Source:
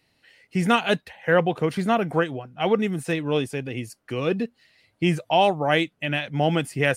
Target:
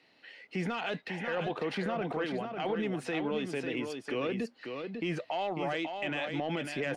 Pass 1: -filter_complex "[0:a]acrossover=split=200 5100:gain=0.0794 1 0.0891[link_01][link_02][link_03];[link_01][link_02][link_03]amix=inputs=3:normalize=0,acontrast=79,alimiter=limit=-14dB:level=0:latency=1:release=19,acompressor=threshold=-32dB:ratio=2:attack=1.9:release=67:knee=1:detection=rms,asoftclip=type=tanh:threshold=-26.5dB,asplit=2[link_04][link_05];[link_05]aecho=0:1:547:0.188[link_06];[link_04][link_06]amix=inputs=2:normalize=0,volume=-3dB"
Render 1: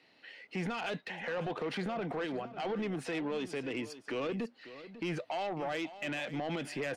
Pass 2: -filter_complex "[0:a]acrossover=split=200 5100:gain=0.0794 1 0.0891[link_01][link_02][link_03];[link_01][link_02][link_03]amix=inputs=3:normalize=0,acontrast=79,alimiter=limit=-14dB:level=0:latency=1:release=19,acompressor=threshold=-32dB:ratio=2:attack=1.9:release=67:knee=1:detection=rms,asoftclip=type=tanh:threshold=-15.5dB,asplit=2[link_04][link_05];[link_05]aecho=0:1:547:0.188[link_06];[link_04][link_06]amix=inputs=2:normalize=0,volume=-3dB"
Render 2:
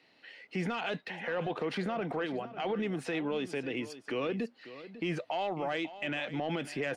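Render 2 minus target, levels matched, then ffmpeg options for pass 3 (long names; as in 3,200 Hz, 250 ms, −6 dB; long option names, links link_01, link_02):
echo-to-direct −8.5 dB
-filter_complex "[0:a]acrossover=split=200 5100:gain=0.0794 1 0.0891[link_01][link_02][link_03];[link_01][link_02][link_03]amix=inputs=3:normalize=0,acontrast=79,alimiter=limit=-14dB:level=0:latency=1:release=19,acompressor=threshold=-32dB:ratio=2:attack=1.9:release=67:knee=1:detection=rms,asoftclip=type=tanh:threshold=-15.5dB,asplit=2[link_04][link_05];[link_05]aecho=0:1:547:0.501[link_06];[link_04][link_06]amix=inputs=2:normalize=0,volume=-3dB"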